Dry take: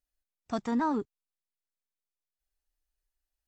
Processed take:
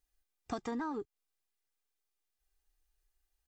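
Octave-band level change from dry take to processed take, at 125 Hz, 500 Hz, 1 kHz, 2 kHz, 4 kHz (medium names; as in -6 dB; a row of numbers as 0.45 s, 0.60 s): -8.5 dB, -5.5 dB, -8.5 dB, -5.5 dB, -5.0 dB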